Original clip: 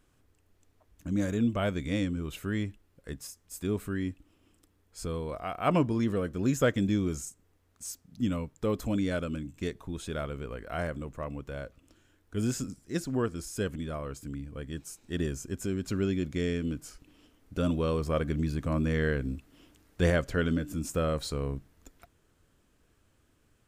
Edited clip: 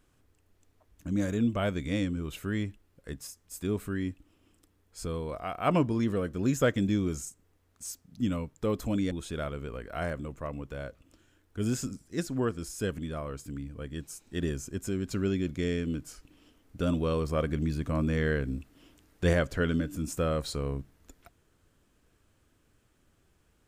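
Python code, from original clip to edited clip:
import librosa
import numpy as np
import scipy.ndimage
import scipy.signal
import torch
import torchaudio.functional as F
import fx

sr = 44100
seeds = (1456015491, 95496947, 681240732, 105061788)

y = fx.edit(x, sr, fx.cut(start_s=9.11, length_s=0.77), tone=tone)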